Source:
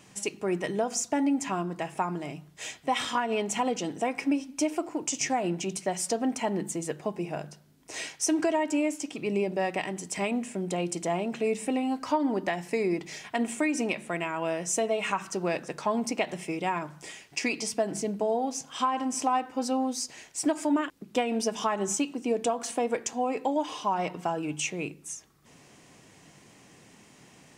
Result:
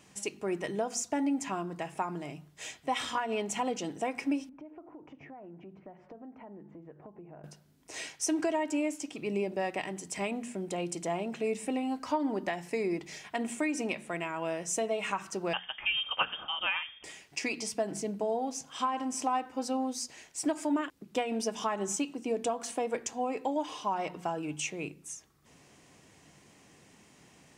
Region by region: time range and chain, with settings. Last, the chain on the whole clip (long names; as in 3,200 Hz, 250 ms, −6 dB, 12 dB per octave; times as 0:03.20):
0:04.49–0:07.44: Bessel low-pass filter 1,200 Hz, order 4 + downward compressor 4 to 1, threshold −43 dBFS
0:15.53–0:17.04: dynamic equaliser 2,200 Hz, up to +8 dB, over −49 dBFS, Q 1.7 + voice inversion scrambler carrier 3,400 Hz
whole clip: parametric band 68 Hz +8 dB 0.41 octaves; mains-hum notches 60/120/180/240 Hz; level −4 dB